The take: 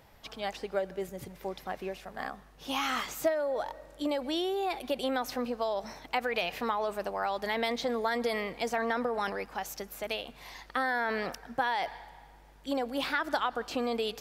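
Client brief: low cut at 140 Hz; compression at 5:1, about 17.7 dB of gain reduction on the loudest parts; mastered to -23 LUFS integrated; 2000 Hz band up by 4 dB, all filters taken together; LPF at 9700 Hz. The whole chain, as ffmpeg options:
-af "highpass=140,lowpass=9.7k,equalizer=f=2k:t=o:g=5,acompressor=threshold=-44dB:ratio=5,volume=23.5dB"

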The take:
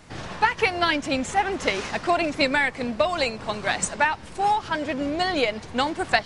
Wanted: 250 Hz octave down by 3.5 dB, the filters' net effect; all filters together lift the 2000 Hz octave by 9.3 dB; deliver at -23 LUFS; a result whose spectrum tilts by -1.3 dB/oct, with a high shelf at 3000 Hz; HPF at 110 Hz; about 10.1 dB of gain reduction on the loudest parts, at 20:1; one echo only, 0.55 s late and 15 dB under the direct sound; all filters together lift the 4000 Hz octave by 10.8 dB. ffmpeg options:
-af "highpass=110,equalizer=f=250:t=o:g=-4.5,equalizer=f=2k:t=o:g=8,highshelf=f=3k:g=3.5,equalizer=f=4k:t=o:g=8,acompressor=threshold=-19dB:ratio=20,aecho=1:1:550:0.178,volume=1dB"

